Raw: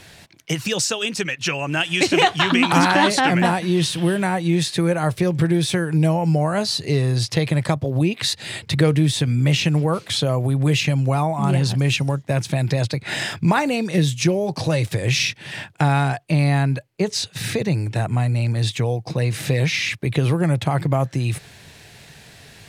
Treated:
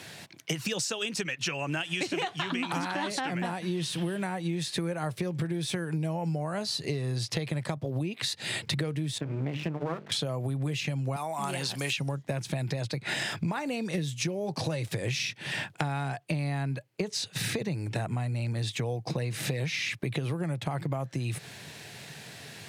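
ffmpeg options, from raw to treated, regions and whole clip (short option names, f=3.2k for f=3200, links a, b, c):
-filter_complex "[0:a]asettb=1/sr,asplit=3[a][b][c];[a]atrim=end=9.184[d];[b]atrim=start=9.18:end=10.12,asetpts=PTS-STARTPTS,afade=t=in:d=0.004:c=qsin,afade=t=out:st=0.936:d=0.004:c=qsin,lowpass=1.7k,bandreject=f=50:t=h:w=6,bandreject=f=100:t=h:w=6,bandreject=f=150:t=h:w=6,bandreject=f=200:t=h:w=6,bandreject=f=250:t=h:w=6,bandreject=f=300:t=h:w=6,bandreject=f=350:t=h:w=6,bandreject=f=400:t=h:w=6,bandreject=f=450:t=h:w=6,aeval=exprs='max(val(0),0)':c=same[e];[c]atrim=start=10.116[f];[d][e]acrossfade=d=0.004:c1=hsin:c2=qsin[g];[g][f]acrossfade=d=0.004:c1=qsin:c2=hsin,asettb=1/sr,asplit=3[h][i][j];[h]atrim=end=11.164[k];[i]atrim=start=11.16:end=11.98,asetpts=PTS-STARTPTS,afade=t=in:d=0.004:c=qsin,afade=t=out:st=0.816:d=0.004:c=qsin,highpass=f=730:p=1,acrossover=split=4500[l][m];[m]acompressor=threshold=-37dB:ratio=4:attack=1:release=60[n];[l][n]amix=inputs=2:normalize=0,aemphasis=mode=production:type=cd[o];[j]atrim=start=11.976[p];[k][o]acrossfade=d=0.004:c1=hsin:c2=qsin[q];[q][p]acrossfade=d=0.004:c1=qsin:c2=hsin,highpass=f=110:w=0.5412,highpass=f=110:w=1.3066,acompressor=threshold=-28dB:ratio=10"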